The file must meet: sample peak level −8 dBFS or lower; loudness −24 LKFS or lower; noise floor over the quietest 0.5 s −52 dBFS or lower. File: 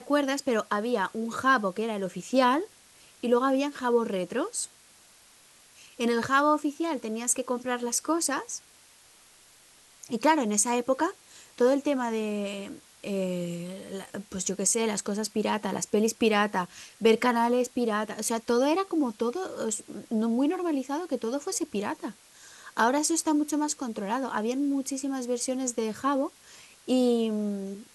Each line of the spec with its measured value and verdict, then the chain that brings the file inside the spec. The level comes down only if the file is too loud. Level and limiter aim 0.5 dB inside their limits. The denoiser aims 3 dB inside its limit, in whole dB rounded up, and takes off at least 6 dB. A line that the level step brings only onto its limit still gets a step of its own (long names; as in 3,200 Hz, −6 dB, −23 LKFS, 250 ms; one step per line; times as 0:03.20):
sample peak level −9.5 dBFS: in spec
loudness −27.5 LKFS: in spec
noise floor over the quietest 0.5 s −57 dBFS: in spec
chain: no processing needed